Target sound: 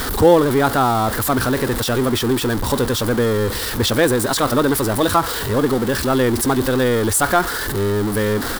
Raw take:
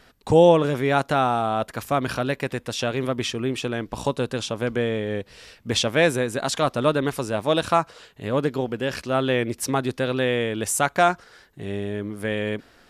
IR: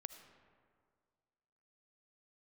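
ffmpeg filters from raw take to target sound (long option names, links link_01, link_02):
-af "aeval=exprs='val(0)+0.5*0.0944*sgn(val(0))':channel_layout=same,atempo=1.5,equalizer=frequency=160:width_type=o:width=0.67:gain=-9,equalizer=frequency=630:width_type=o:width=0.67:gain=-8,equalizer=frequency=2500:width_type=o:width=0.67:gain=-12,equalizer=frequency=6300:width_type=o:width=0.67:gain=-7,volume=6.5dB"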